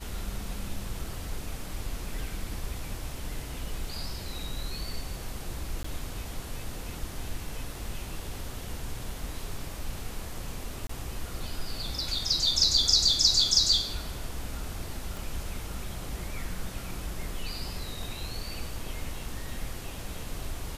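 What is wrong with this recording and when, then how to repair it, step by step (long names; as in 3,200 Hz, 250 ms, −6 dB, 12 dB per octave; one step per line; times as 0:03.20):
0:05.83–0:05.84: drop-out 14 ms
0:10.87–0:10.89: drop-out 24 ms
0:15.17: click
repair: click removal
repair the gap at 0:05.83, 14 ms
repair the gap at 0:10.87, 24 ms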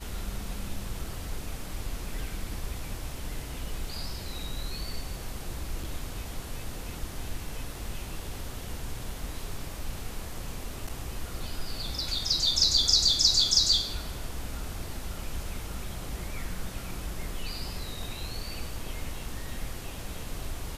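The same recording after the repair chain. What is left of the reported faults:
0:15.17: click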